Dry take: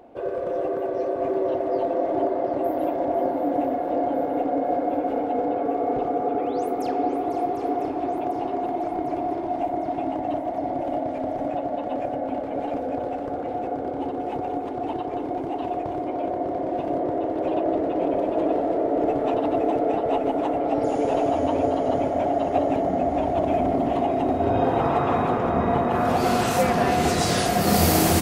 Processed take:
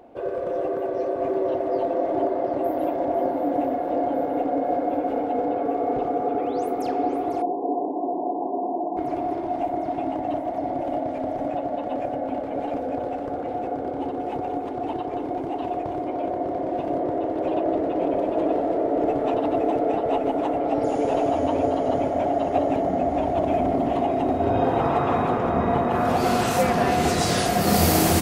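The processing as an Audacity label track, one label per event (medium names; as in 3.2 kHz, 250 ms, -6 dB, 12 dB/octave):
7.420000	8.970000	brick-wall FIR band-pass 160–1100 Hz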